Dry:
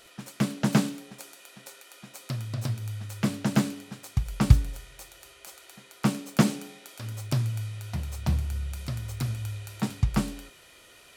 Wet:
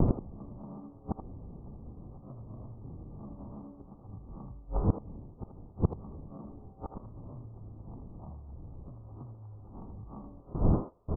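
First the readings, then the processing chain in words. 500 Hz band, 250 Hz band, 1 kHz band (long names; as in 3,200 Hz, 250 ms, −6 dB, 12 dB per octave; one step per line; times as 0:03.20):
−3.0 dB, −8.5 dB, −7.5 dB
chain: peak hold with a rise ahead of every peak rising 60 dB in 0.30 s
wind on the microphone 120 Hz −26 dBFS
noise gate −44 dBFS, range −32 dB
parametric band 670 Hz +4.5 dB 2.1 octaves
automatic gain control gain up to 6 dB
brickwall limiter −12.5 dBFS, peak gain reduction 11 dB
downward compressor, threshold −23 dBFS, peak gain reduction 7.5 dB
gate with flip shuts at −25 dBFS, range −32 dB
Chebyshev low-pass with heavy ripple 1,200 Hz, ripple 3 dB
far-end echo of a speakerphone 80 ms, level −7 dB
highs frequency-modulated by the lows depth 0.23 ms
level +15.5 dB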